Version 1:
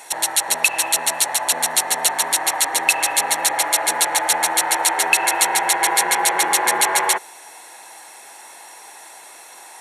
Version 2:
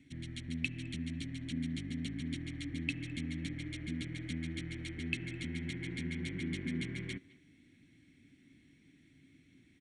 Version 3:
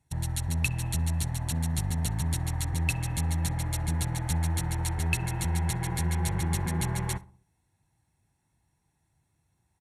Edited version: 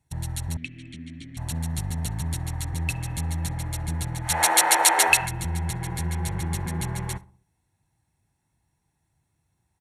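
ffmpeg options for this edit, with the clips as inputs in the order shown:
-filter_complex "[2:a]asplit=3[s0][s1][s2];[s0]atrim=end=0.572[s3];[1:a]atrim=start=0.568:end=1.372[s4];[s1]atrim=start=1.368:end=4.47[s5];[0:a]atrim=start=4.23:end=5.31[s6];[s2]atrim=start=5.07[s7];[s3][s4]acrossfade=d=0.004:c1=hsin:c2=hsin[s8];[s8][s5]acrossfade=d=0.004:c1=hsin:c2=hsin[s9];[s9][s6]acrossfade=d=0.24:c1=tri:c2=tri[s10];[s10][s7]acrossfade=d=0.24:c1=tri:c2=tri"

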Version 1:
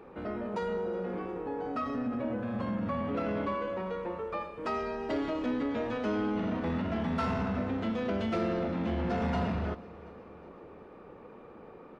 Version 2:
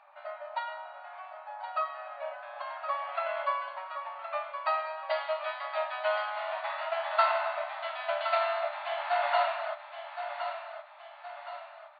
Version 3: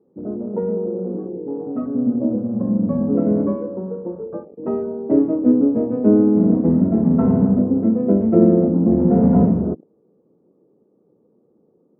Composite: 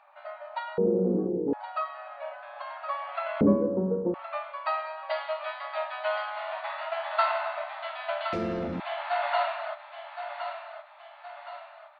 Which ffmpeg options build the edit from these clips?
-filter_complex "[2:a]asplit=2[s0][s1];[1:a]asplit=4[s2][s3][s4][s5];[s2]atrim=end=0.782[s6];[s0]atrim=start=0.778:end=1.532[s7];[s3]atrim=start=1.528:end=3.412[s8];[s1]atrim=start=3.408:end=4.142[s9];[s4]atrim=start=4.138:end=8.332[s10];[0:a]atrim=start=8.328:end=8.802[s11];[s5]atrim=start=8.798[s12];[s6][s7]acrossfade=d=0.004:c1=hsin:c2=hsin[s13];[s13][s8]acrossfade=d=0.004:c1=hsin:c2=hsin[s14];[s14][s9]acrossfade=d=0.004:c1=hsin:c2=hsin[s15];[s15][s10]acrossfade=d=0.004:c1=hsin:c2=hsin[s16];[s16][s11]acrossfade=d=0.004:c1=hsin:c2=hsin[s17];[s17][s12]acrossfade=d=0.004:c1=hsin:c2=hsin"

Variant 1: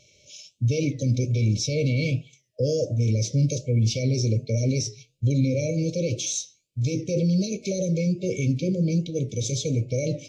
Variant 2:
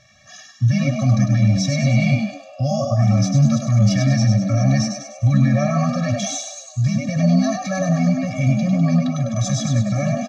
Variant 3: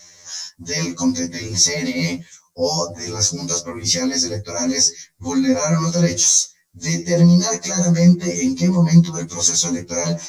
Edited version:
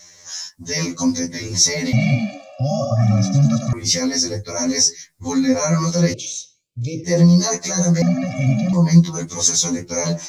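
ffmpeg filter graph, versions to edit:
-filter_complex "[1:a]asplit=2[s0][s1];[2:a]asplit=4[s2][s3][s4][s5];[s2]atrim=end=1.932[s6];[s0]atrim=start=1.928:end=3.732[s7];[s3]atrim=start=3.728:end=6.142[s8];[0:a]atrim=start=6.138:end=7.042[s9];[s4]atrim=start=7.038:end=8.022[s10];[s1]atrim=start=8.018:end=8.732[s11];[s5]atrim=start=8.728[s12];[s6][s7]acrossfade=d=0.004:c1=hsin:c2=hsin[s13];[s13][s8]acrossfade=d=0.004:c1=hsin:c2=hsin[s14];[s14][s9]acrossfade=d=0.004:c1=hsin:c2=hsin[s15];[s15][s10]acrossfade=d=0.004:c1=hsin:c2=hsin[s16];[s16][s11]acrossfade=d=0.004:c1=hsin:c2=hsin[s17];[s17][s12]acrossfade=d=0.004:c1=hsin:c2=hsin"

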